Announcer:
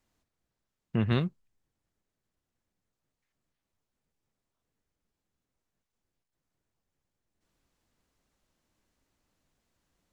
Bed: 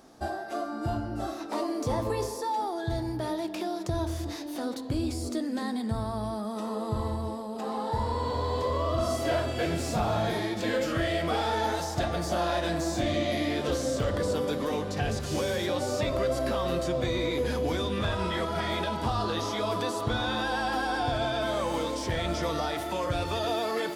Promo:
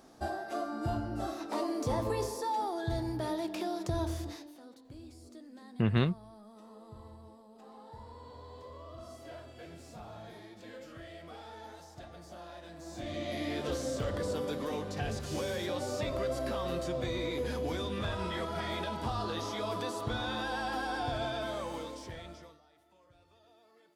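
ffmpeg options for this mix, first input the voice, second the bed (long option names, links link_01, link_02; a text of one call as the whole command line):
ffmpeg -i stem1.wav -i stem2.wav -filter_complex "[0:a]adelay=4850,volume=-0.5dB[link_01];[1:a]volume=11dB,afade=type=out:start_time=4.11:duration=0.46:silence=0.141254,afade=type=in:start_time=12.76:duration=0.79:silence=0.199526,afade=type=out:start_time=21.26:duration=1.33:silence=0.0375837[link_02];[link_01][link_02]amix=inputs=2:normalize=0" out.wav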